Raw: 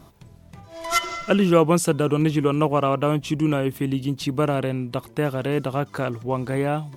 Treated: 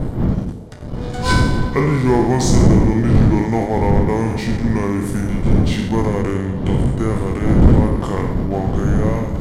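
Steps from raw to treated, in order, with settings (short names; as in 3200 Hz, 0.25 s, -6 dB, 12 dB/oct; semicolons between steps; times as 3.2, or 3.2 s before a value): spectral trails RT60 0.60 s; wind noise 230 Hz -16 dBFS; de-hum 70.22 Hz, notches 32; sample leveller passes 2; speed mistake 45 rpm record played at 33 rpm; reverse; upward compressor, threshold -7 dBFS; reverse; notch 2600 Hz, Q 7.5; on a send: delay with a stepping band-pass 0.128 s, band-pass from 210 Hz, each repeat 0.7 oct, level -8 dB; on the sum: gain -7 dB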